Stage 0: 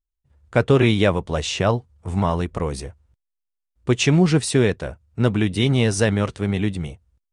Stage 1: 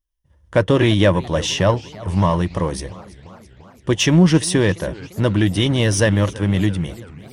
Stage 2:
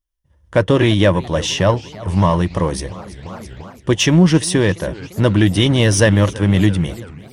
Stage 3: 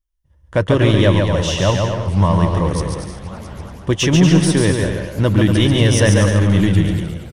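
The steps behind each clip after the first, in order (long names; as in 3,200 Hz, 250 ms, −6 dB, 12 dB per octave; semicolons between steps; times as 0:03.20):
EQ curve with evenly spaced ripples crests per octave 1.2, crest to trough 8 dB; in parallel at −6 dB: soft clipping −20 dBFS, distortion −7 dB; on the sum: feedback echo with a swinging delay time 339 ms, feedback 65%, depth 201 cents, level −20 dB
automatic gain control gain up to 14.5 dB; level −1 dB
low-shelf EQ 77 Hz +8.5 dB; on a send: bouncing-ball delay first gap 140 ms, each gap 0.7×, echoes 5; on the sum: level −3 dB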